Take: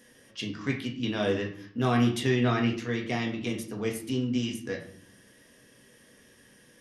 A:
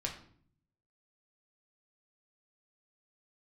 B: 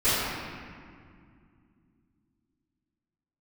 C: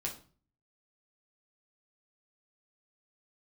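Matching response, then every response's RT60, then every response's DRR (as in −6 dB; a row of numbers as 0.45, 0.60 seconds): A; 0.55, 2.2, 0.40 seconds; 0.0, −19.5, −2.0 decibels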